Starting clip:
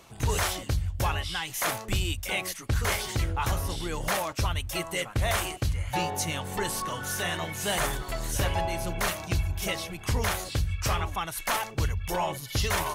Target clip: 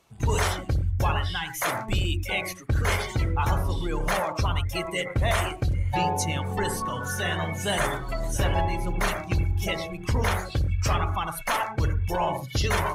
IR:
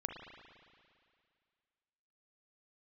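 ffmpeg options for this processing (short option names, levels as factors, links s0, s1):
-filter_complex "[1:a]atrim=start_sample=2205,atrim=end_sample=3969,asetrate=29106,aresample=44100[s0];[0:a][s0]afir=irnorm=-1:irlink=0,afftdn=nr=13:nf=-35,volume=1.33"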